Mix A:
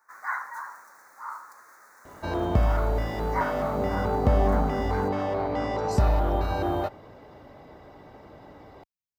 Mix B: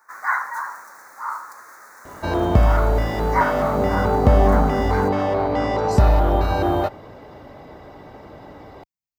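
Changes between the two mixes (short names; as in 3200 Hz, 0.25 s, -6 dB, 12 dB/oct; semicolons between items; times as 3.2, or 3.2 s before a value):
speech +4.0 dB; first sound +9.0 dB; second sound +7.0 dB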